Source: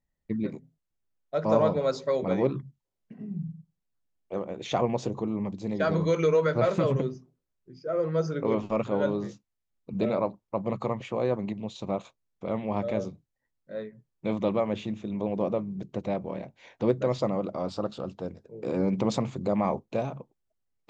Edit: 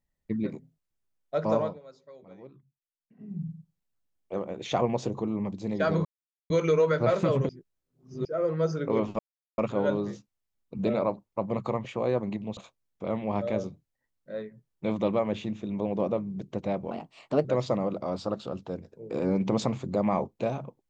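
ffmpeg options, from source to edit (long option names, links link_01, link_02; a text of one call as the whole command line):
ffmpeg -i in.wav -filter_complex "[0:a]asplit=10[link_01][link_02][link_03][link_04][link_05][link_06][link_07][link_08][link_09][link_10];[link_01]atrim=end=1.79,asetpts=PTS-STARTPTS,afade=type=out:start_time=1.44:duration=0.35:silence=0.0707946[link_11];[link_02]atrim=start=1.79:end=3.08,asetpts=PTS-STARTPTS,volume=-23dB[link_12];[link_03]atrim=start=3.08:end=6.05,asetpts=PTS-STARTPTS,afade=type=in:duration=0.35:silence=0.0707946,afade=type=out:start_time=2.966:duration=0.004:curve=hsin,apad=pad_dur=0.45[link_13];[link_04]atrim=start=6.05:end=7.042,asetpts=PTS-STARTPTS,afade=type=in:duration=0.004:curve=hsin[link_14];[link_05]atrim=start=7.038:end=7.802,asetpts=PTS-STARTPTS,areverse[link_15];[link_06]atrim=start=7.798:end=8.74,asetpts=PTS-STARTPTS,afade=type=out:start_time=0.938:duration=0.004:curve=hsin,apad=pad_dur=0.39[link_16];[link_07]atrim=start=8.74:end=11.732,asetpts=PTS-STARTPTS,afade=type=in:duration=0.004:curve=hsin[link_17];[link_08]atrim=start=11.978:end=16.324[link_18];[link_09]atrim=start=16.32:end=16.97,asetpts=PTS-STARTPTS,asetrate=53361,aresample=44100,atrim=end_sample=23690,asetpts=PTS-STARTPTS[link_19];[link_10]atrim=start=16.966[link_20];[link_11][link_12][link_13][link_14]concat=n=4:v=0:a=1[link_21];[link_21][link_15]acrossfade=duration=0.004:curve1=hsin:curve2=hsin[link_22];[link_16][link_17]concat=n=2:v=0:a=1[link_23];[link_22][link_23]acrossfade=duration=0.004:curve1=hsin:curve2=hsin[link_24];[link_24][link_18]acrossfade=duration=0.004:curve1=hsin:curve2=hsin[link_25];[link_25][link_19]acrossfade=duration=0.004:curve1=hsin:curve2=hsin[link_26];[link_26][link_20]acrossfade=duration=0.004:curve1=hsin:curve2=hsin" out.wav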